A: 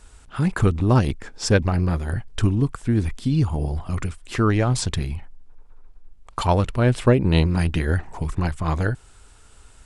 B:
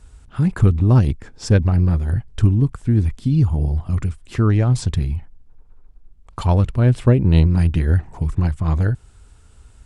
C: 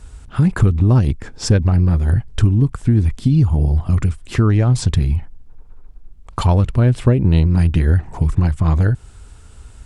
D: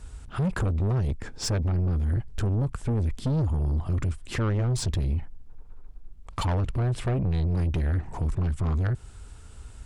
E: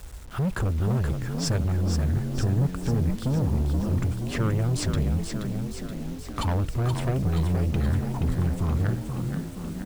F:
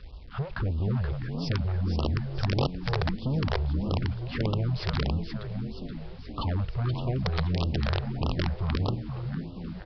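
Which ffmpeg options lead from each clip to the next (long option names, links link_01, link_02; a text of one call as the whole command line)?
ffmpeg -i in.wav -af "equalizer=frequency=77:width=0.31:gain=11.5,volume=-5dB" out.wav
ffmpeg -i in.wav -af "acompressor=threshold=-19dB:ratio=2.5,volume=7dB" out.wav
ffmpeg -i in.wav -af "asoftclip=type=tanh:threshold=-18dB,volume=-4dB" out.wav
ffmpeg -i in.wav -filter_complex "[0:a]asplit=2[link_01][link_02];[link_02]asplit=8[link_03][link_04][link_05][link_06][link_07][link_08][link_09][link_10];[link_03]adelay=476,afreqshift=45,volume=-6.5dB[link_11];[link_04]adelay=952,afreqshift=90,volume=-10.9dB[link_12];[link_05]adelay=1428,afreqshift=135,volume=-15.4dB[link_13];[link_06]adelay=1904,afreqshift=180,volume=-19.8dB[link_14];[link_07]adelay=2380,afreqshift=225,volume=-24.2dB[link_15];[link_08]adelay=2856,afreqshift=270,volume=-28.7dB[link_16];[link_09]adelay=3332,afreqshift=315,volume=-33.1dB[link_17];[link_10]adelay=3808,afreqshift=360,volume=-37.6dB[link_18];[link_11][link_12][link_13][link_14][link_15][link_16][link_17][link_18]amix=inputs=8:normalize=0[link_19];[link_01][link_19]amix=inputs=2:normalize=0,acrusher=bits=7:mix=0:aa=0.000001" out.wav
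ffmpeg -i in.wav -af "aresample=11025,aeval=exprs='(mod(7.08*val(0)+1,2)-1)/7.08':channel_layout=same,aresample=44100,afftfilt=real='re*(1-between(b*sr/1024,220*pow(1900/220,0.5+0.5*sin(2*PI*1.6*pts/sr))/1.41,220*pow(1900/220,0.5+0.5*sin(2*PI*1.6*pts/sr))*1.41))':imag='im*(1-between(b*sr/1024,220*pow(1900/220,0.5+0.5*sin(2*PI*1.6*pts/sr))/1.41,220*pow(1900/220,0.5+0.5*sin(2*PI*1.6*pts/sr))*1.41))':win_size=1024:overlap=0.75,volume=-3dB" out.wav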